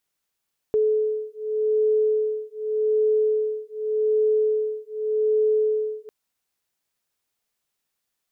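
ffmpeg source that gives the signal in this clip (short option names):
-f lavfi -i "aevalsrc='0.075*(sin(2*PI*430*t)+sin(2*PI*430.85*t))':d=5.35:s=44100"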